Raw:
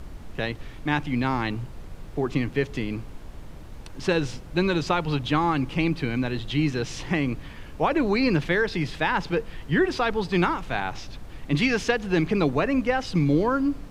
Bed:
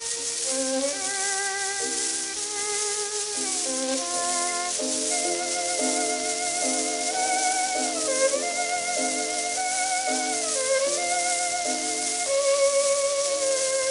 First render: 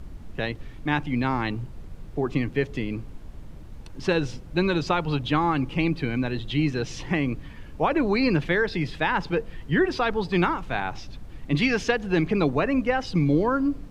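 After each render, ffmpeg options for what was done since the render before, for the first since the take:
-af "afftdn=nr=6:nf=-41"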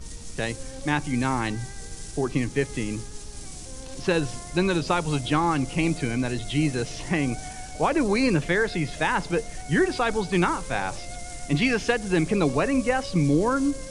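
-filter_complex "[1:a]volume=-15.5dB[a];[0:a][a]amix=inputs=2:normalize=0"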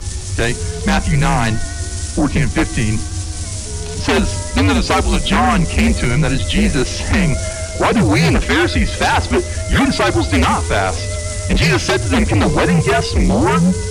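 -af "afreqshift=-100,aeval=exprs='0.355*sin(PI/2*3.16*val(0)/0.355)':c=same"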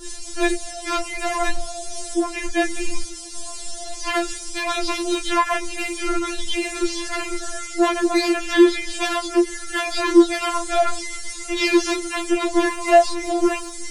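-af "flanger=delay=19:depth=4.5:speed=2.5,afftfilt=real='re*4*eq(mod(b,16),0)':imag='im*4*eq(mod(b,16),0)':win_size=2048:overlap=0.75"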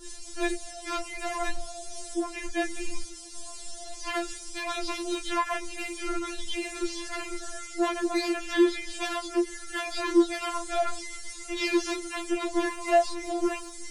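-af "volume=-8.5dB"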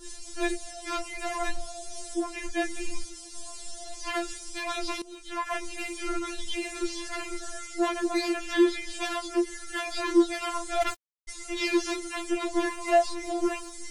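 -filter_complex "[0:a]asplit=3[a][b][c];[a]afade=t=out:st=10.8:d=0.02[d];[b]acrusher=bits=3:mix=0:aa=0.5,afade=t=in:st=10.8:d=0.02,afade=t=out:st=11.27:d=0.02[e];[c]afade=t=in:st=11.27:d=0.02[f];[d][e][f]amix=inputs=3:normalize=0,asplit=2[g][h];[g]atrim=end=5.02,asetpts=PTS-STARTPTS,afade=t=out:st=5.016:d=0.004:c=hsin:silence=0.16788[i];[h]atrim=start=5.02,asetpts=PTS-STARTPTS,afade=t=in:d=0.54:c=qua:silence=0.16788[j];[i][j]concat=n=2:v=0:a=1"

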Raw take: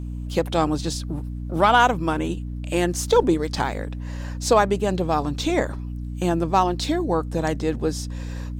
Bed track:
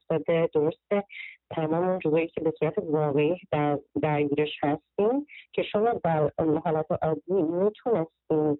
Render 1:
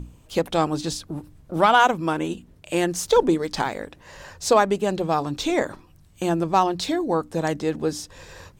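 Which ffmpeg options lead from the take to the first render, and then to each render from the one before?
-af "bandreject=f=60:t=h:w=6,bandreject=f=120:t=h:w=6,bandreject=f=180:t=h:w=6,bandreject=f=240:t=h:w=6,bandreject=f=300:t=h:w=6"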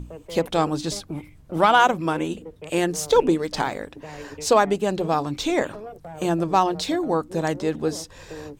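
-filter_complex "[1:a]volume=-14dB[a];[0:a][a]amix=inputs=2:normalize=0"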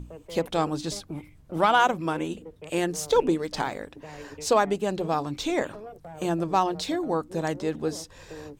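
-af "volume=-4dB"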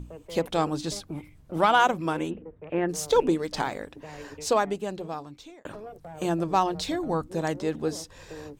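-filter_complex "[0:a]asplit=3[a][b][c];[a]afade=t=out:st=2.29:d=0.02[d];[b]lowpass=f=2.1k:w=0.5412,lowpass=f=2.1k:w=1.3066,afade=t=in:st=2.29:d=0.02,afade=t=out:st=2.88:d=0.02[e];[c]afade=t=in:st=2.88:d=0.02[f];[d][e][f]amix=inputs=3:normalize=0,asettb=1/sr,asplit=3[g][h][i];[g]atrim=end=6.444[j];[h]atrim=start=6.44:end=7.27,asetpts=PTS-STARTPTS,afade=t=in:d=0.004:c=qsin,afade=t=out:st=0.826:d=0.004:c=qsin,asubboost=boost=9.5:cutoff=170[k];[i]atrim=start=7.266[l];[j][k]acrossfade=d=0.004:c1=hsin:c2=qsin[m];[m][l]acrossfade=d=0.004:c1=qsin:c2=hsin,asplit=2[n][o];[n]atrim=end=5.65,asetpts=PTS-STARTPTS,afade=t=out:st=4.26:d=1.39[p];[o]atrim=start=5.65,asetpts=PTS-STARTPTS,afade=t=in:d=0.004:c=hsin[q];[p][q]concat=n=2:v=0:a=1"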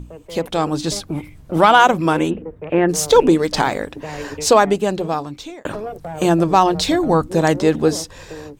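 -filter_complex "[0:a]asplit=2[a][b];[b]alimiter=limit=-18dB:level=0:latency=1,volume=-1dB[c];[a][c]amix=inputs=2:normalize=0,dynaudnorm=f=240:g=7:m=11.5dB"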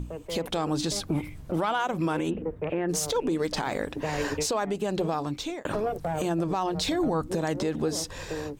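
-af "acompressor=threshold=-20dB:ratio=6,alimiter=limit=-18.5dB:level=0:latency=1:release=79"

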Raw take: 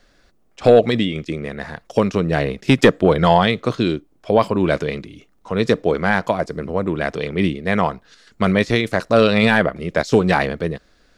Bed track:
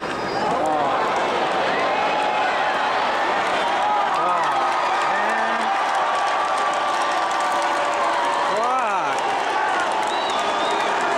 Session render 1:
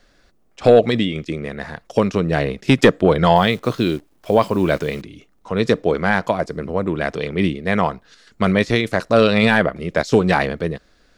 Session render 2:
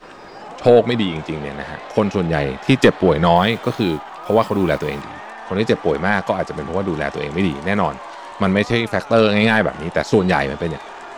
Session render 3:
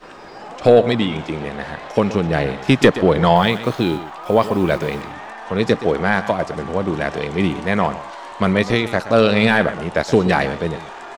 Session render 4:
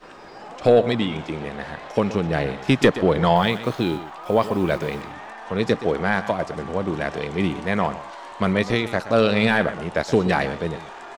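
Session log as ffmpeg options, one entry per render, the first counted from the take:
-filter_complex "[0:a]asettb=1/sr,asplit=3[a][b][c];[a]atrim=end=3.364[d];[b]atrim=start=3.36:end=5.02,asetpts=PTS-STARTPTS,afade=t=in:d=0.004:c=qsin,afade=t=out:st=1.656:d=0.004:c=qsin,acrusher=bits=8:dc=4:mix=0:aa=0.000001[e];[c]atrim=start=5.016[f];[d][e]acrossfade=d=0.004:c1=hsin:c2=qsin[g];[g][f]acrossfade=d=0.004:c1=qsin:c2=hsin"
-filter_complex "[1:a]volume=-14dB[a];[0:a][a]amix=inputs=2:normalize=0"
-af "aecho=1:1:123:0.2"
-af "volume=-4dB"

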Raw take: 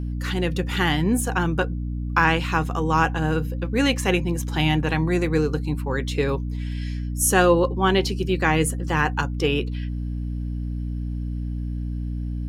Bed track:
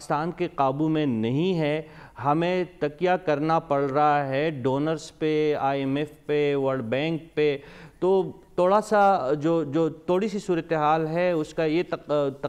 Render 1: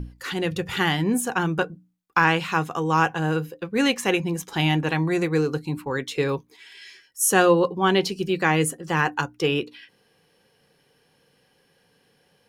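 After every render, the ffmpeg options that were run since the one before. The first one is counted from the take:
-af "bandreject=f=60:t=h:w=6,bandreject=f=120:t=h:w=6,bandreject=f=180:t=h:w=6,bandreject=f=240:t=h:w=6,bandreject=f=300:t=h:w=6"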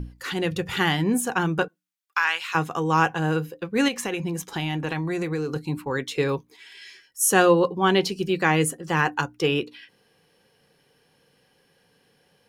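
-filter_complex "[0:a]asettb=1/sr,asplit=3[a][b][c];[a]atrim=end=1.684[d];[b]atrim=start=1.68:end=2.55,asetpts=PTS-STARTPTS,afade=t=in:d=0.004:c=qsin,afade=t=out:st=0.866:d=0.004:c=qsin,highpass=1.4k[e];[c]atrim=start=2.546[f];[d][e]acrossfade=d=0.004:c1=hsin:c2=qsin[g];[g][f]acrossfade=d=0.004:c1=qsin:c2=hsin,asettb=1/sr,asplit=3[h][i][j];[h]atrim=end=3.884[k];[i]atrim=start=3.88:end=5.56,asetpts=PTS-STARTPTS,afade=t=in:d=0.004:c=qsin,afade=t=out:st=1.676:d=0.004:c=qsin,acompressor=threshold=-23dB:ratio=10:attack=3.2:release=140:knee=1:detection=peak[l];[j]atrim=start=5.556[m];[k][l]acrossfade=d=0.004:c1=hsin:c2=qsin[n];[n][m]acrossfade=d=0.004:c1=qsin:c2=hsin"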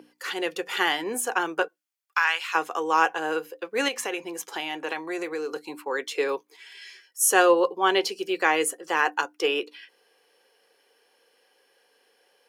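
-af "highpass=f=370:w=0.5412,highpass=f=370:w=1.3066,bandreject=f=3.8k:w=17"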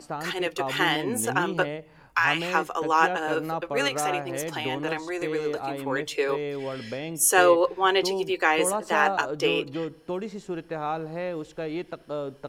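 -filter_complex "[1:a]volume=-8dB[a];[0:a][a]amix=inputs=2:normalize=0"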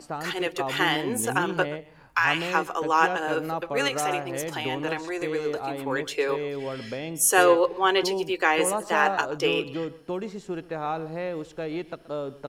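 -af "aecho=1:1:127:0.119"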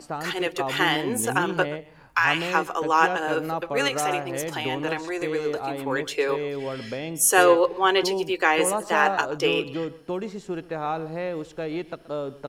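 -af "volume=1.5dB"

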